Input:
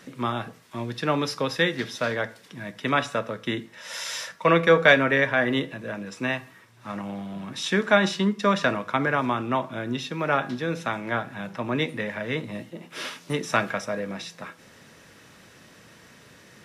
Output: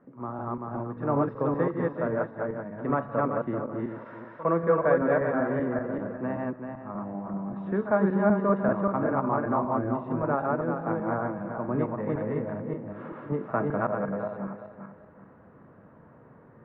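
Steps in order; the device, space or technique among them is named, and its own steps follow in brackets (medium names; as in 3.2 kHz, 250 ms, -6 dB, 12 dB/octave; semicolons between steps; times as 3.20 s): backward echo that repeats 193 ms, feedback 50%, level -0.5 dB; pre-echo 57 ms -16.5 dB; action camera in a waterproof case (low-pass 1.2 kHz 24 dB/octave; level rider gain up to 5.5 dB; trim -8 dB; AAC 64 kbps 32 kHz)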